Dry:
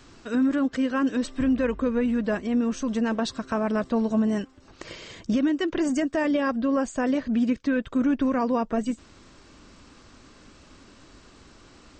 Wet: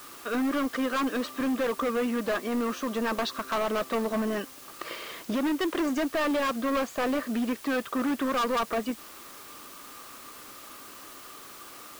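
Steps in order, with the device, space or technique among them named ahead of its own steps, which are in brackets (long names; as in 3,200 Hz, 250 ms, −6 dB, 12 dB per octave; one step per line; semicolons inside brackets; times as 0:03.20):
drive-through speaker (band-pass filter 370–4,000 Hz; parametric band 1,200 Hz +11 dB 0.22 octaves; hard clipping −27.5 dBFS, distortion −8 dB; white noise bed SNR 18 dB)
level +3.5 dB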